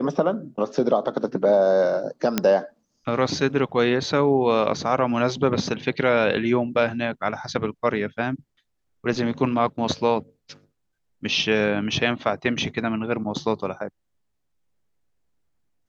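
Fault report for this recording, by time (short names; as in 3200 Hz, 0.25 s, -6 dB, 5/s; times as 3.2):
2.38 pop -5 dBFS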